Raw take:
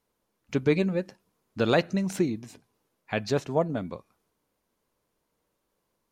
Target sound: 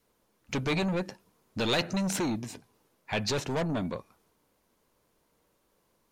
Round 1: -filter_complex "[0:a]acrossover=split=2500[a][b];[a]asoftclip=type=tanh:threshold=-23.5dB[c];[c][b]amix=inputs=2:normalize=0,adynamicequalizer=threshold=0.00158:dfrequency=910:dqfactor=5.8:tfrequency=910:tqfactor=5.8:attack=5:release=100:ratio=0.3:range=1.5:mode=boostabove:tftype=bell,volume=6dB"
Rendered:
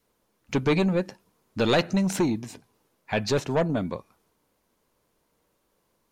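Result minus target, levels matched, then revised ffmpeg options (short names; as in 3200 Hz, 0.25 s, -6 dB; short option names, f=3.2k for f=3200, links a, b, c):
soft clip: distortion -5 dB
-filter_complex "[0:a]acrossover=split=2500[a][b];[a]asoftclip=type=tanh:threshold=-33dB[c];[c][b]amix=inputs=2:normalize=0,adynamicequalizer=threshold=0.00158:dfrequency=910:dqfactor=5.8:tfrequency=910:tqfactor=5.8:attack=5:release=100:ratio=0.3:range=1.5:mode=boostabove:tftype=bell,volume=6dB"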